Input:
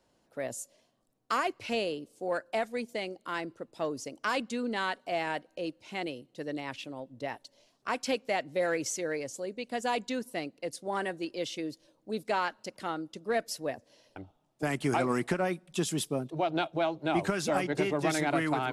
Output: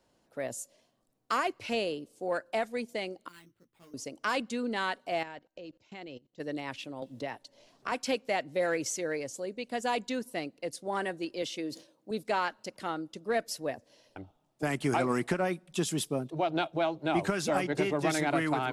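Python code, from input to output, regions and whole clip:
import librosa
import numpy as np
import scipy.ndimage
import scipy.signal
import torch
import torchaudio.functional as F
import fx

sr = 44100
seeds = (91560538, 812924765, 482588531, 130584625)

y = fx.chain(x, sr, fx.tone_stack(knobs='6-0-2'),
    fx.doubler(ms=17.0, db=-2.5),
    fx.sample_hold(seeds[0], rate_hz=5900.0, jitter_pct=0), at=(3.28, 3.94))
y = fx.chain(y, sr, fx.low_shelf(hz=85.0, db=7.0),
    fx.level_steps(step_db=22),
    fx.brickwall_lowpass(high_hz=7800.0), at=(5.23, 6.4))
y = fx.chain(y, sr, fx.high_shelf(hz=12000.0, db=-6.5),
    fx.band_squash(depth_pct=70), at=(7.02, 7.92))
y = fx.chain(y, sr, fx.highpass(hz=150.0, slope=12),
    fx.sustainer(db_per_s=150.0), at=(11.42, 12.11))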